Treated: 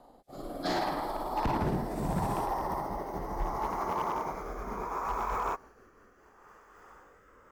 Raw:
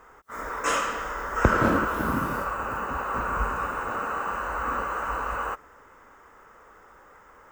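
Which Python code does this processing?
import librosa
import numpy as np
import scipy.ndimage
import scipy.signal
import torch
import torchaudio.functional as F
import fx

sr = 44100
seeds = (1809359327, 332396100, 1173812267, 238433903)

y = fx.pitch_glide(x, sr, semitones=-9.0, runs='ending unshifted')
y = fx.rotary(y, sr, hz=0.7)
y = np.clip(10.0 ** (25.0 / 20.0) * y, -1.0, 1.0) / 10.0 ** (25.0 / 20.0)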